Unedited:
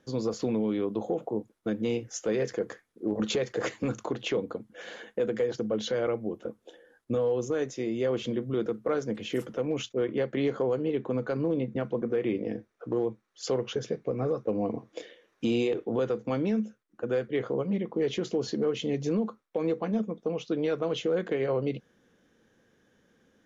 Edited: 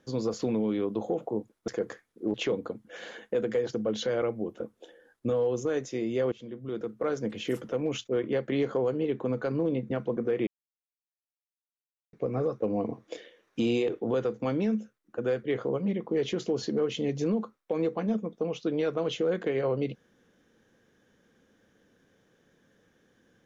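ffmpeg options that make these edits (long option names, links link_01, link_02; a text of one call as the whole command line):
ffmpeg -i in.wav -filter_complex "[0:a]asplit=6[link_01][link_02][link_03][link_04][link_05][link_06];[link_01]atrim=end=1.682[link_07];[link_02]atrim=start=2.478:end=3.142[link_08];[link_03]atrim=start=4.188:end=8.17,asetpts=PTS-STARTPTS,afade=type=out:start_time=3.978:duration=0.004:curve=hsin:silence=0.125893[link_09];[link_04]atrim=start=8.17:end=12.32,asetpts=PTS-STARTPTS,afade=type=in:duration=0.9:silence=0.125893,afade=type=out:start_time=4.146:duration=0.004:curve=hsin[link_10];[link_05]atrim=start=12.32:end=13.98,asetpts=PTS-STARTPTS,volume=0[link_11];[link_06]atrim=start=13.98,asetpts=PTS-STARTPTS,afade=type=in:duration=0.004:curve=hsin[link_12];[link_07][link_08]acrossfade=duration=0.004:curve1=hsin:curve2=hsin[link_13];[link_09][link_10][link_11][link_12]concat=n=4:v=0:a=1[link_14];[link_13][link_14]acrossfade=duration=0.004:curve1=hsin:curve2=hsin" out.wav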